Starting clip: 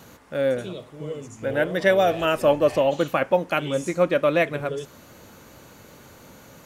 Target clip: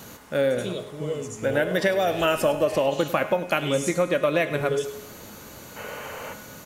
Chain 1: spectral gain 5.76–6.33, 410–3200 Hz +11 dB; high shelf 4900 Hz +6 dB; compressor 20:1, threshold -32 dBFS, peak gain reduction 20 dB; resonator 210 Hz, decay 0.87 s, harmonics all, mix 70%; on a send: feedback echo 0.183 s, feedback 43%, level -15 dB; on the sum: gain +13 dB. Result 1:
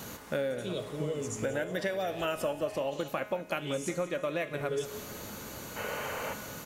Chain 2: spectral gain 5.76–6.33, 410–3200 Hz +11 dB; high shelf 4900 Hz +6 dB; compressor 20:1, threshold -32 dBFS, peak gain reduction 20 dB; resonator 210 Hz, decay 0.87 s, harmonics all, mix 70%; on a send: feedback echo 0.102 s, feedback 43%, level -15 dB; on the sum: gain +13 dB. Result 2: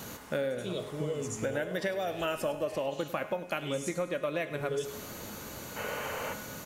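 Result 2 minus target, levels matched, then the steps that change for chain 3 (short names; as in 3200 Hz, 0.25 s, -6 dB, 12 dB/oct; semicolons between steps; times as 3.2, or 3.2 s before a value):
compressor: peak gain reduction +10.5 dB
change: compressor 20:1, threshold -21 dBFS, peak gain reduction 9.5 dB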